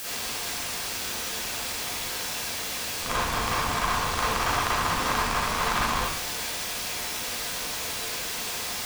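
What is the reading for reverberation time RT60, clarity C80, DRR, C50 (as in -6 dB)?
0.65 s, 3.5 dB, -10.0 dB, -3.0 dB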